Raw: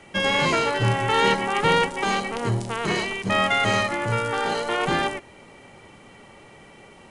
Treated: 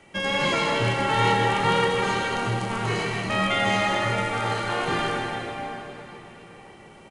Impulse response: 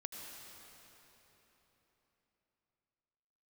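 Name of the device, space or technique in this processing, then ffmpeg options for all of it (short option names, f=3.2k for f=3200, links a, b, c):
cave: -filter_complex "[0:a]aecho=1:1:158:0.376[a];[1:a]atrim=start_sample=2205[b];[a][b]afir=irnorm=-1:irlink=0"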